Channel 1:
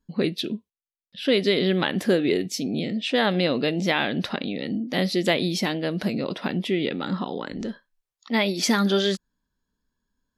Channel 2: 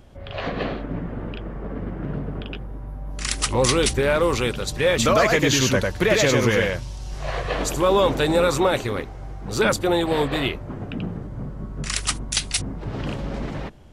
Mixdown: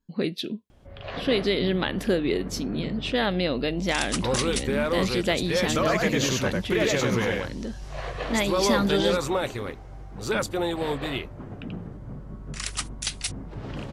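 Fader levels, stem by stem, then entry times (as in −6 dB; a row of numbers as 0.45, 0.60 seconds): −3.0, −6.5 decibels; 0.00, 0.70 seconds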